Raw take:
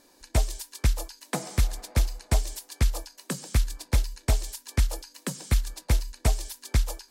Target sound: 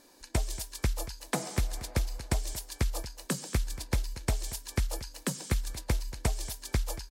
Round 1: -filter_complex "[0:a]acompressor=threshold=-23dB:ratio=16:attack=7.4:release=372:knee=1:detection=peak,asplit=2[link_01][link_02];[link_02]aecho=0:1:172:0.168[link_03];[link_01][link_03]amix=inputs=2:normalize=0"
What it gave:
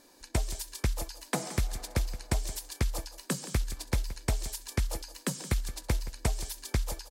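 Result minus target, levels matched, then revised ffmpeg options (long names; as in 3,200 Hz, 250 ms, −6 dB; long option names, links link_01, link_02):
echo 60 ms early
-filter_complex "[0:a]acompressor=threshold=-23dB:ratio=16:attack=7.4:release=372:knee=1:detection=peak,asplit=2[link_01][link_02];[link_02]aecho=0:1:232:0.168[link_03];[link_01][link_03]amix=inputs=2:normalize=0"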